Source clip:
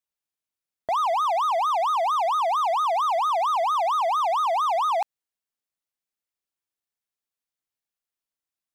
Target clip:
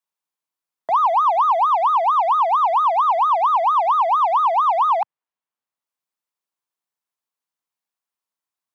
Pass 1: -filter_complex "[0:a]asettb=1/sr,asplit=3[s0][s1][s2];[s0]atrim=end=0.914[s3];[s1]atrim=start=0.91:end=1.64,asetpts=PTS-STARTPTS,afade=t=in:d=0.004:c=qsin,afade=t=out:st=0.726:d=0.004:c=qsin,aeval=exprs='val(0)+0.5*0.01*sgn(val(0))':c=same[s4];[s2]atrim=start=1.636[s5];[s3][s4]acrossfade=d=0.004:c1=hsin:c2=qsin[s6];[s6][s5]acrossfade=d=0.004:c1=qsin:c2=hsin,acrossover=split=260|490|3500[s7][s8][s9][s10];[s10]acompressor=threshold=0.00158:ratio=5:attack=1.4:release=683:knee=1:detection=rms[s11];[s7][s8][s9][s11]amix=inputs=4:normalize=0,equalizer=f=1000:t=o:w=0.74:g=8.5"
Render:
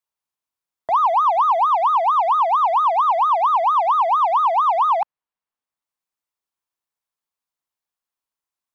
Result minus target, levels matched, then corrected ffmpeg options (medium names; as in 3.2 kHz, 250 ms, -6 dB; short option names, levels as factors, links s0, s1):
125 Hz band +2.5 dB
-filter_complex "[0:a]asettb=1/sr,asplit=3[s0][s1][s2];[s0]atrim=end=0.914[s3];[s1]atrim=start=0.91:end=1.64,asetpts=PTS-STARTPTS,afade=t=in:d=0.004:c=qsin,afade=t=out:st=0.726:d=0.004:c=qsin,aeval=exprs='val(0)+0.5*0.01*sgn(val(0))':c=same[s4];[s2]atrim=start=1.636[s5];[s3][s4]acrossfade=d=0.004:c1=hsin:c2=qsin[s6];[s6][s5]acrossfade=d=0.004:c1=qsin:c2=hsin,acrossover=split=260|490|3500[s7][s8][s9][s10];[s10]acompressor=threshold=0.00158:ratio=5:attack=1.4:release=683:knee=1:detection=rms[s11];[s7][s8][s9][s11]amix=inputs=4:normalize=0,highpass=f=120:w=0.5412,highpass=f=120:w=1.3066,equalizer=f=1000:t=o:w=0.74:g=8.5"